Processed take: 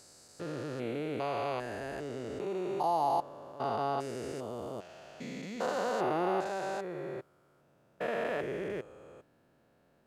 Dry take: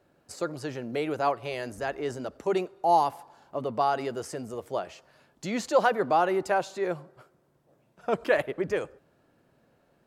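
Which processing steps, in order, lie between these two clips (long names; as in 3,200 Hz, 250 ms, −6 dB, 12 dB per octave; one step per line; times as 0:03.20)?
spectrum averaged block by block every 400 ms
level −1 dB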